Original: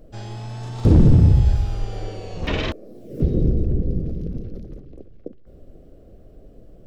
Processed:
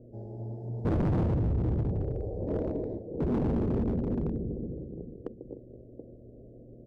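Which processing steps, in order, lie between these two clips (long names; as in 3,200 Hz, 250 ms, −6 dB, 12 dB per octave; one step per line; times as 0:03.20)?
0:03.26–0:03.97: parametric band 240 Hz +10 dB 0.28 octaves
in parallel at −4 dB: soft clipping −15.5 dBFS, distortion −9 dB
on the sum: high-pass filter 67 Hz 6 dB per octave
low-shelf EQ 380 Hz −11 dB
on a send: multi-tap delay 145/244/262/303/730 ms −8.5/−9/−6.5/−13.5/−8.5 dB
on the sum: hum with harmonics 120 Hz, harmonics 3, −53 dBFS
inverse Chebyshev low-pass filter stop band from 1,100 Hz, stop band 40 dB
hard clipping −23 dBFS, distortion −8 dB
highs frequency-modulated by the lows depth 0.29 ms
level −1 dB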